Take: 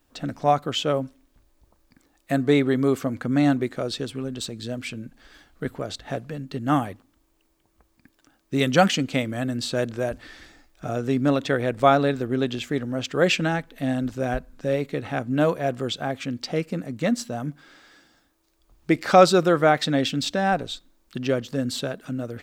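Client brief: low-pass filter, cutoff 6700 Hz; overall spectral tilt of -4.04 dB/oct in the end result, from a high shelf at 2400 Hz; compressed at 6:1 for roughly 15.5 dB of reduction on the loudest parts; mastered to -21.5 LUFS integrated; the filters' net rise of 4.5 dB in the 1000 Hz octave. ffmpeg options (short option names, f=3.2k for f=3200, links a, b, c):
-af "lowpass=6.7k,equalizer=f=1k:t=o:g=6.5,highshelf=f=2.4k:g=3.5,acompressor=threshold=-23dB:ratio=6,volume=7.5dB"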